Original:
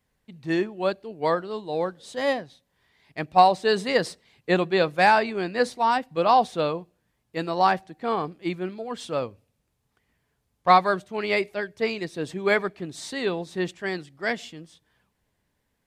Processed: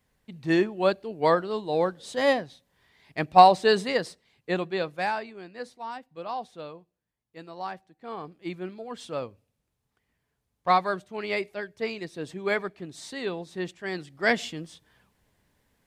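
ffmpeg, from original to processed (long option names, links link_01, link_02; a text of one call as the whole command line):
ffmpeg -i in.wav -af "volume=22dB,afade=type=out:start_time=3.63:duration=0.4:silence=0.398107,afade=type=out:start_time=4.62:duration=0.75:silence=0.354813,afade=type=in:start_time=7.98:duration=0.64:silence=0.316228,afade=type=in:start_time=13.85:duration=0.53:silence=0.316228" out.wav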